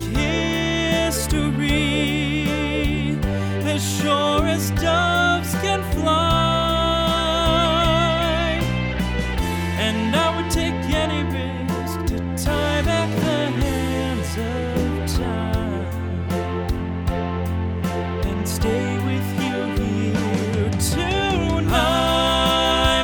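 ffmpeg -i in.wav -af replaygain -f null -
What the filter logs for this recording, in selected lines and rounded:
track_gain = +1.6 dB
track_peak = 0.404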